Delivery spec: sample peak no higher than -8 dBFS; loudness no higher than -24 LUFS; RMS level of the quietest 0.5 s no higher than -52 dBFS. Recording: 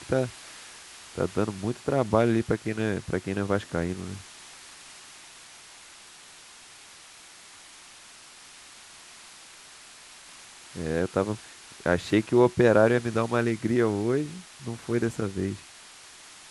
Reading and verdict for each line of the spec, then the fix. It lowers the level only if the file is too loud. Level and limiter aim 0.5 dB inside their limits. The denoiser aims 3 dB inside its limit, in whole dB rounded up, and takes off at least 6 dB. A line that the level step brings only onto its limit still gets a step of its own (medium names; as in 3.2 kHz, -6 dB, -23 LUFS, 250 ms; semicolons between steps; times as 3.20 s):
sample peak -6.5 dBFS: fail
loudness -26.5 LUFS: pass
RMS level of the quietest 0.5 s -49 dBFS: fail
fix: noise reduction 6 dB, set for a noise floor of -49 dBFS; peak limiter -8.5 dBFS